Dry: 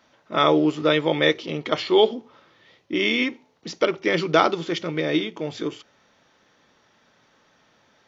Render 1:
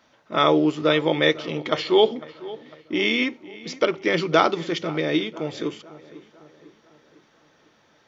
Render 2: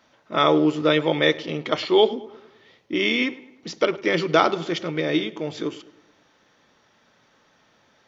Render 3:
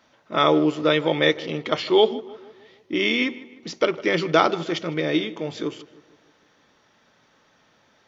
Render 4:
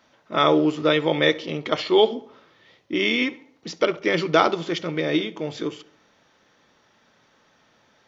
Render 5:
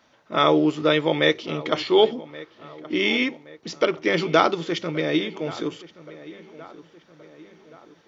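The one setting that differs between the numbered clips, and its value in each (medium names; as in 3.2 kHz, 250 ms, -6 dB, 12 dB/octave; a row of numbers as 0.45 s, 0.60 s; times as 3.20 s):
filtered feedback delay, time: 501 ms, 105 ms, 155 ms, 68 ms, 1124 ms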